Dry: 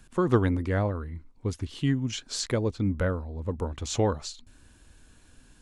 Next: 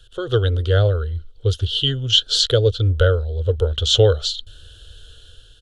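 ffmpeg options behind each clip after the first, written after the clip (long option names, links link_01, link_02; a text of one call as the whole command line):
ffmpeg -i in.wav -af "firequalizer=gain_entry='entry(110,0);entry(190,-29);entry(450,2);entry(970,-23);entry(1400,0);entry(2200,-22);entry(3100,14);entry(5000,-3);entry(7500,-8)':delay=0.05:min_phase=1,dynaudnorm=framelen=220:gausssize=5:maxgain=7dB,volume=6dB" out.wav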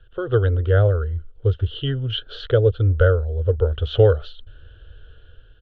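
ffmpeg -i in.wav -af "lowpass=frequency=2200:width=0.5412,lowpass=frequency=2200:width=1.3066" out.wav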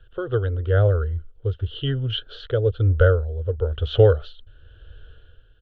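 ffmpeg -i in.wav -af "tremolo=f=1:d=0.47" out.wav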